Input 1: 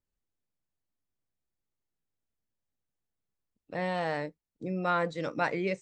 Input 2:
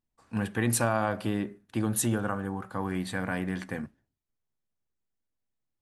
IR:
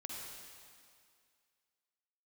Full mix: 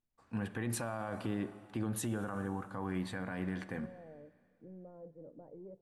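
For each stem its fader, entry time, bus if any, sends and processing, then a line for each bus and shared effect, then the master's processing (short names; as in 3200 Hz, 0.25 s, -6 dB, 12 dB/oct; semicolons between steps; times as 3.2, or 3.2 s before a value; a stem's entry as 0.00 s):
-15.5 dB, 0.00 s, send -15.5 dB, soft clip -28.5 dBFS, distortion -11 dB; Chebyshev low-pass 570 Hz, order 3
-5.0 dB, 0.00 s, send -11.5 dB, high shelf 4300 Hz -8.5 dB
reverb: on, RT60 2.2 s, pre-delay 44 ms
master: limiter -27 dBFS, peak gain reduction 10 dB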